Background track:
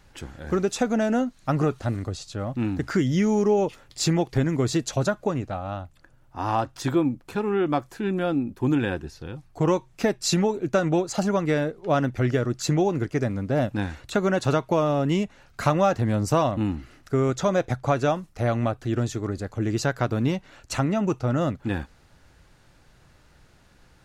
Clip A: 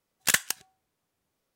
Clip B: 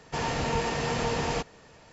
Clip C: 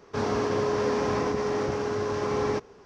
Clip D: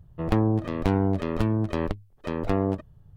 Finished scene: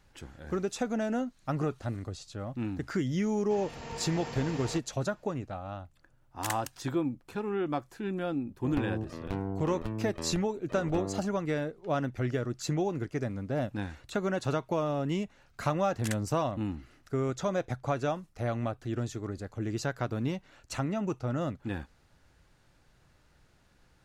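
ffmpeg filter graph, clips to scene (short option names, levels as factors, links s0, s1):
-filter_complex "[1:a]asplit=2[s0][s1];[0:a]volume=0.398[s2];[2:a]dynaudnorm=f=300:g=3:m=2.11[s3];[s1]afwtdn=0.0158[s4];[s3]atrim=end=1.92,asetpts=PTS-STARTPTS,volume=0.126,afade=t=in:d=0.004:c=hsin,afade=t=out:st=1.916:d=0.004:c=hsin,adelay=148617S[s5];[s0]atrim=end=1.55,asetpts=PTS-STARTPTS,volume=0.211,afade=t=in:d=0.004:c=hsin,afade=t=out:st=1.546:d=0.004:c=hsin,adelay=6160[s6];[4:a]atrim=end=3.16,asetpts=PTS-STARTPTS,volume=0.266,afade=t=in:d=0.004:c=hsin,afade=t=out:st=3.156:d=0.004:c=hsin,adelay=8450[s7];[s4]atrim=end=1.55,asetpts=PTS-STARTPTS,volume=0.168,afade=t=in:d=0.004:c=hsin,afade=t=out:st=1.546:d=0.004:c=hsin,adelay=15770[s8];[s2][s5][s6][s7][s8]amix=inputs=5:normalize=0"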